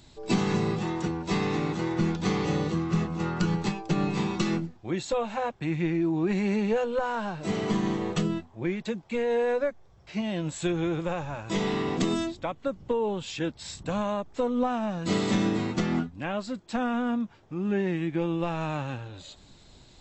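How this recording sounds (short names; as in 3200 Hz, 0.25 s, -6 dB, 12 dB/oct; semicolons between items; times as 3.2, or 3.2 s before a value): noise floor -55 dBFS; spectral tilt -6.0 dB/oct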